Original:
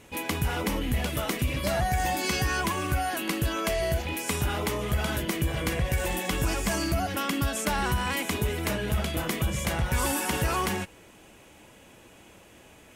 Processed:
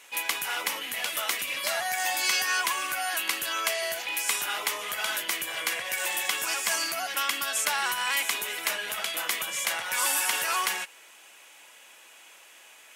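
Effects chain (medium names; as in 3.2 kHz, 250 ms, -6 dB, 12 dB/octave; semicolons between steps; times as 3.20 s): Bessel high-pass 1.4 kHz, order 2; trim +5.5 dB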